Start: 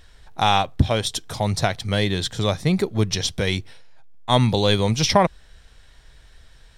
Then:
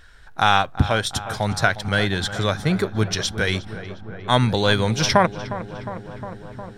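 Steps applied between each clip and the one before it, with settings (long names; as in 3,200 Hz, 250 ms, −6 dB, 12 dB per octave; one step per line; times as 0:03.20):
parametric band 1,500 Hz +12.5 dB 0.48 octaves
feedback echo with a low-pass in the loop 358 ms, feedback 80%, low-pass 2,200 Hz, level −13.5 dB
level −1 dB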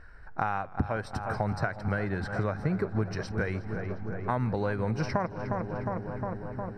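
downward compressor 6 to 1, threshold −25 dBFS, peak gain reduction 13.5 dB
moving average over 13 samples
feedback echo with a swinging delay time 165 ms, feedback 78%, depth 101 cents, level −22 dB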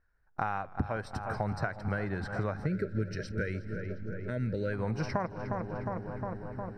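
noise gate with hold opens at −34 dBFS
gain on a spectral selection 0:02.66–0:04.73, 630–1,300 Hz −26 dB
level −3 dB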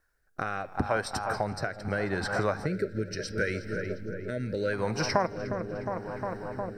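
bass and treble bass −9 dB, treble +9 dB
hum removal 232.1 Hz, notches 24
rotating-speaker cabinet horn 0.75 Hz
level +8.5 dB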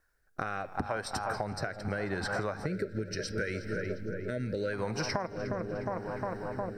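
downward compressor 6 to 1, threshold −29 dBFS, peak gain reduction 9.5 dB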